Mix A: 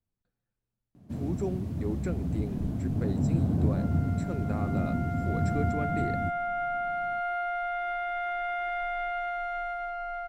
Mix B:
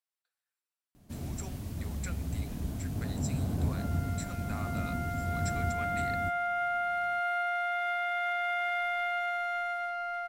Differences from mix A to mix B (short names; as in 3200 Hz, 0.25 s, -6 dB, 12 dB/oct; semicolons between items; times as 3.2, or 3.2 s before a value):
speech: add HPF 910 Hz; first sound: remove HPF 140 Hz 12 dB/oct; master: add tilt +3.5 dB/oct